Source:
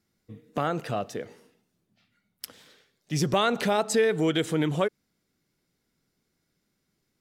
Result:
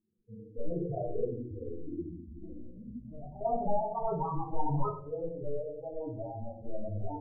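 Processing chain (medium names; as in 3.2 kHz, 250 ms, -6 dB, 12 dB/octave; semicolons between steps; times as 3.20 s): integer overflow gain 21.5 dB; low-pass sweep 480 Hz -> 1.1 kHz, 1.66–4.99 s; loudest bins only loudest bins 4; 1.24–3.41 s: compression 2:1, threshold -58 dBFS, peak gain reduction 16 dB; simulated room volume 54 m³, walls mixed, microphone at 0.94 m; ever faster or slower copies 245 ms, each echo -6 st, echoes 3, each echo -6 dB; trim -6 dB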